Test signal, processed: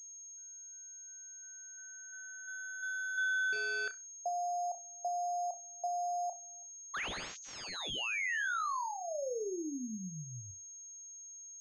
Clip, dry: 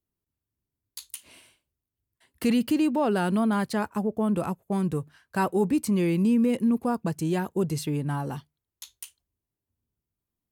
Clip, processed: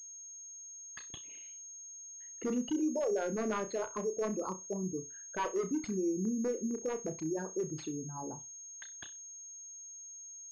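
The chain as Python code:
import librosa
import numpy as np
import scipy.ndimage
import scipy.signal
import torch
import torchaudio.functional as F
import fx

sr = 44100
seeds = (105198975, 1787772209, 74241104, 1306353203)

p1 = fx.envelope_sharpen(x, sr, power=3.0)
p2 = fx.highpass(p1, sr, hz=460.0, slope=6)
p3 = fx.peak_eq(p2, sr, hz=770.0, db=-8.0, octaves=0.38)
p4 = 10.0 ** (-23.0 / 20.0) * (np.abs((p3 / 10.0 ** (-23.0 / 20.0) + 3.0) % 4.0 - 2.0) - 1.0)
p5 = p4 + fx.room_flutter(p4, sr, wall_m=5.5, rt60_s=0.22, dry=0)
p6 = fx.pwm(p5, sr, carrier_hz=6500.0)
y = p6 * librosa.db_to_amplitude(-4.5)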